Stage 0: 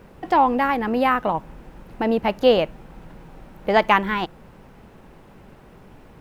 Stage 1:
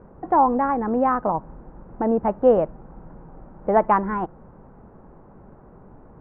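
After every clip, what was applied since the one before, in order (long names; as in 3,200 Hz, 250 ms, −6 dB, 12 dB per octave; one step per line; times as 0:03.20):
low-pass filter 1,300 Hz 24 dB per octave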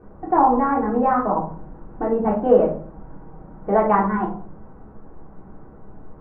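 rectangular room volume 360 cubic metres, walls furnished, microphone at 3.5 metres
level −4.5 dB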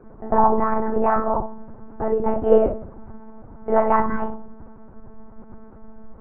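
one-pitch LPC vocoder at 8 kHz 220 Hz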